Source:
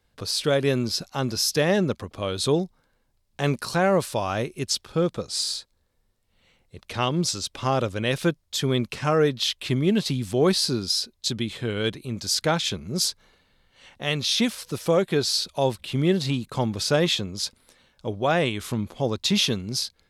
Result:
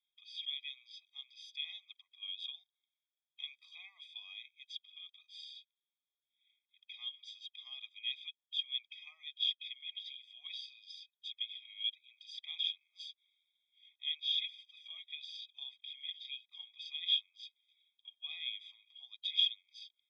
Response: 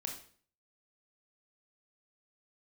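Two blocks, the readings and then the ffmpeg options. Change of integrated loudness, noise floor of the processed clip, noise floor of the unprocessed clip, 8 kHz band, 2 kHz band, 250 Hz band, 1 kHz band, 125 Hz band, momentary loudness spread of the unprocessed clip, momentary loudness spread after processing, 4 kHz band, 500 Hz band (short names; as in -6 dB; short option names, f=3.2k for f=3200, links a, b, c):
-15.0 dB, under -85 dBFS, -69 dBFS, under -35 dB, -19.5 dB, under -40 dB, under -40 dB, under -40 dB, 7 LU, 18 LU, -9.5 dB, under -40 dB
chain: -af "asuperpass=centerf=3000:order=4:qfactor=5.6,afftfilt=real='re*eq(mod(floor(b*sr/1024/640),2),1)':imag='im*eq(mod(floor(b*sr/1024/640),2),1)':win_size=1024:overlap=0.75,volume=3dB"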